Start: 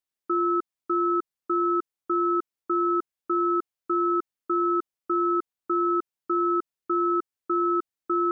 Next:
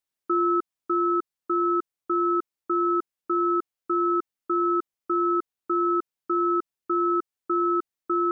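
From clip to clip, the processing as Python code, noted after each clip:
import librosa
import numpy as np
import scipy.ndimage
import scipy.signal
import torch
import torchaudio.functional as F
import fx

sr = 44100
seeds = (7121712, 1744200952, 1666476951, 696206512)

y = fx.rider(x, sr, range_db=10, speed_s=2.0)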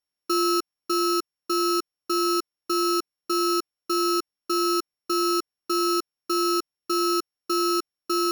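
y = np.r_[np.sort(x[:len(x) // 8 * 8].reshape(-1, 8), axis=1).ravel(), x[len(x) // 8 * 8:]]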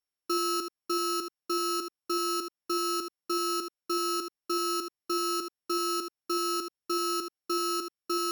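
y = x + 10.0 ** (-8.5 / 20.0) * np.pad(x, (int(79 * sr / 1000.0), 0))[:len(x)]
y = y * 10.0 ** (-5.0 / 20.0)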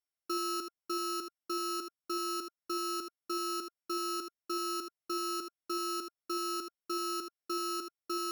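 y = fx.small_body(x, sr, hz=(660.0, 1400.0, 2100.0), ring_ms=45, db=7)
y = y * 10.0 ** (-6.0 / 20.0)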